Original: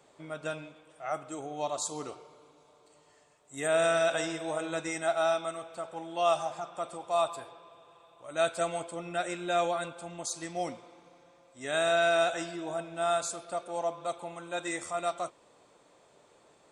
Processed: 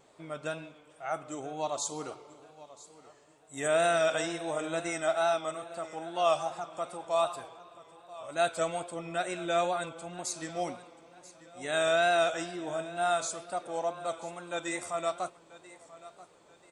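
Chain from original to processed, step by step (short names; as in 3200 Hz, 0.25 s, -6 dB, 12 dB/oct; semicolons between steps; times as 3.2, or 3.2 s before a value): feedback echo 0.985 s, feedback 36%, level -18 dB; wow and flutter 63 cents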